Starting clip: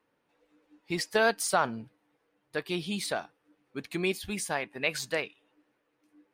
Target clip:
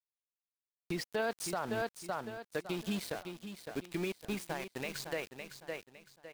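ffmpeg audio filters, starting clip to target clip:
ffmpeg -i in.wav -filter_complex "[0:a]asettb=1/sr,asplit=3[link_01][link_02][link_03];[link_01]atrim=end=2.724[link_04];[link_02]atrim=start=2.72:end=4.9,asetpts=PTS-STARTPTS,afade=type=in:duration=0.004:curve=qsin,afade=type=out:start_time=2.176:duration=0.004:curve=qsin,acompressor=threshold=-31dB:ratio=6[link_05];[link_03]atrim=start=4.896[link_06];[link_04][link_05]acrossfade=duration=0.004:curve1=hsin:curve2=qsin[link_07];[link_07][link_06]acrossfade=duration=0.004:curve1=qsin:curve2=hsin,highshelf=frequency=4400:gain=-10.5,acompressor=mode=upward:threshold=-47dB:ratio=2.5,aeval=exprs='val(0)*gte(abs(val(0)),0.0112)':channel_layout=same,equalizer=frequency=1400:width_type=o:width=1.7:gain=-3,aecho=1:1:558|1116|1674:0.316|0.098|0.0304,alimiter=level_in=2.5dB:limit=-24dB:level=0:latency=1:release=166,volume=-2.5dB,volume=1dB" out.wav

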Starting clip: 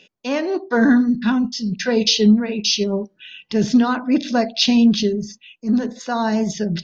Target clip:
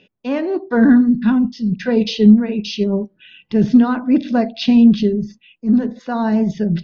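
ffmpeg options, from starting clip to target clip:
ffmpeg -i in.wav -af "lowpass=3100,lowshelf=frequency=340:gain=9.5,volume=-2.5dB" out.wav

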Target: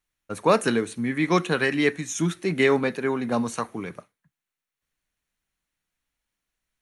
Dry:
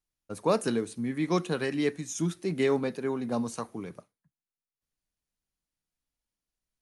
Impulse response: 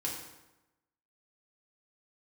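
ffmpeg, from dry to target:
-af "equalizer=frequency=1900:width=0.82:gain=8,bandreject=frequency=4900:width=8.7,volume=4.5dB"

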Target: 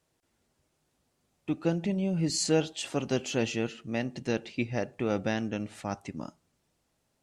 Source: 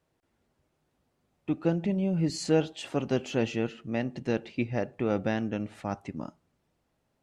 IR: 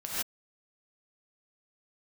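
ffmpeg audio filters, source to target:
-af "equalizer=frequency=8000:width=0.44:gain=10,volume=-1.5dB"

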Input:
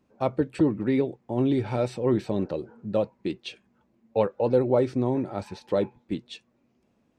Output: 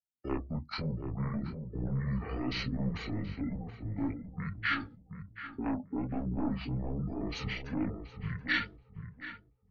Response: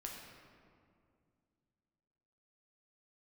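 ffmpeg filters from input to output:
-filter_complex "[0:a]agate=range=-22dB:threshold=-55dB:ratio=16:detection=peak,aeval=exprs='0.376*sin(PI/2*2.51*val(0)/0.376)':channel_layout=same,lowshelf=frequency=78:gain=10,areverse,acompressor=threshold=-27dB:ratio=4,areverse,alimiter=level_in=3.5dB:limit=-24dB:level=0:latency=1:release=269,volume=-3.5dB,acrossover=split=360|3000[link_01][link_02][link_03];[link_01]acompressor=threshold=-35dB:ratio=8[link_04];[link_04][link_02][link_03]amix=inputs=3:normalize=0,crystalizer=i=5.5:c=0,flanger=delay=16.5:depth=7.6:speed=1.5,atempo=0.74,afftdn=noise_reduction=32:noise_floor=-55,asetrate=22696,aresample=44100,atempo=1.94306,asplit=2[link_05][link_06];[link_06]adelay=728,lowpass=frequency=1000:poles=1,volume=-7dB,asplit=2[link_07][link_08];[link_08]adelay=728,lowpass=frequency=1000:poles=1,volume=0.24,asplit=2[link_09][link_10];[link_10]adelay=728,lowpass=frequency=1000:poles=1,volume=0.24[link_11];[link_05][link_07][link_09][link_11]amix=inputs=4:normalize=0,volume=2.5dB"

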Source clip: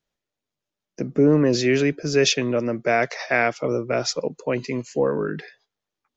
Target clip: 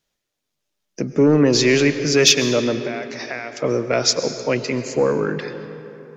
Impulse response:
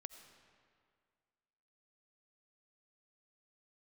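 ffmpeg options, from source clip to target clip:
-filter_complex "[0:a]asettb=1/sr,asplit=3[link_01][link_02][link_03];[link_01]atrim=end=2.794[link_04];[link_02]atrim=start=2.79:end=3.57,asetpts=PTS-STARTPTS,afade=type=in:duration=0.004:curve=qsin,afade=type=out:start_time=0.776:duration=0.004:curve=qsin,acompressor=threshold=-33dB:ratio=5[link_05];[link_03]atrim=start=3.566[link_06];[link_04][link_05]acrossfade=duration=0.004:curve1=hsin:curve2=qsin[link_07];[link_07][link_06]acrossfade=duration=0.004:curve1=qsin:curve2=hsin,asoftclip=type=tanh:threshold=-8.5dB,asplit=2[link_08][link_09];[1:a]atrim=start_sample=2205,asetrate=29106,aresample=44100,highshelf=frequency=2300:gain=8.5[link_10];[link_09][link_10]afir=irnorm=-1:irlink=0,volume=10.5dB[link_11];[link_08][link_11]amix=inputs=2:normalize=0,volume=-6.5dB"

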